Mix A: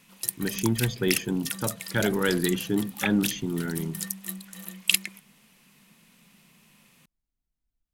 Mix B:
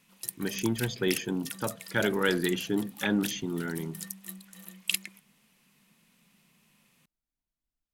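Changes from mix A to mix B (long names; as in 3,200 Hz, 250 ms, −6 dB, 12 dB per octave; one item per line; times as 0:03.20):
speech: add low-shelf EQ 180 Hz −9.5 dB
background −7.0 dB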